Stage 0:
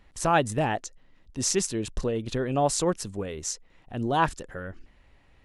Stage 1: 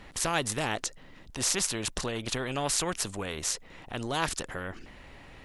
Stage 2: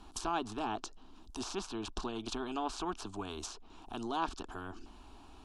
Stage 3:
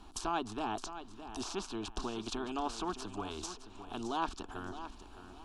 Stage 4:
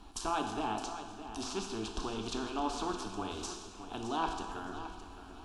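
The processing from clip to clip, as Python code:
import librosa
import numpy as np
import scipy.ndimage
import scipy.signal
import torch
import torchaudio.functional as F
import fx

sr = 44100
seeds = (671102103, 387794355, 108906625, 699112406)

y1 = fx.spectral_comp(x, sr, ratio=2.0)
y2 = fx.fixed_phaser(y1, sr, hz=530.0, stages=6)
y2 = fx.env_lowpass_down(y2, sr, base_hz=2700.0, full_db=-30.0)
y2 = F.gain(torch.from_numpy(y2), -1.5).numpy()
y3 = fx.echo_feedback(y2, sr, ms=615, feedback_pct=29, wet_db=-11.5)
y4 = fx.rev_plate(y3, sr, seeds[0], rt60_s=1.4, hf_ratio=0.9, predelay_ms=0, drr_db=3.0)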